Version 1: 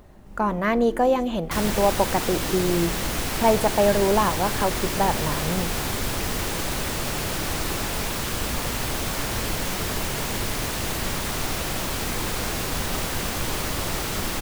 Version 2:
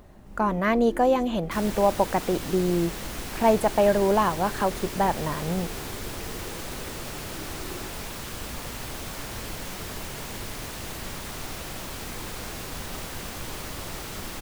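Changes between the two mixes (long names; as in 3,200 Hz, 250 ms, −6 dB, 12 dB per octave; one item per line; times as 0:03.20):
second sound −8.5 dB
reverb: off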